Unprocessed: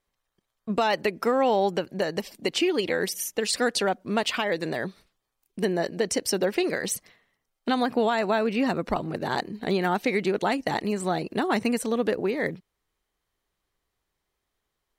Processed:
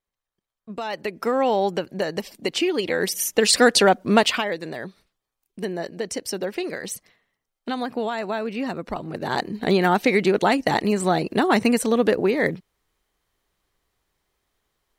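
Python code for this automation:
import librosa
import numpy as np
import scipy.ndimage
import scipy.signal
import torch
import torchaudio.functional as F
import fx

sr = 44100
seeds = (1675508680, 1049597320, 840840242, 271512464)

y = fx.gain(x, sr, db=fx.line((0.74, -8.0), (1.35, 1.5), (2.86, 1.5), (3.44, 9.0), (4.19, 9.0), (4.6, -3.0), (8.95, -3.0), (9.56, 6.0)))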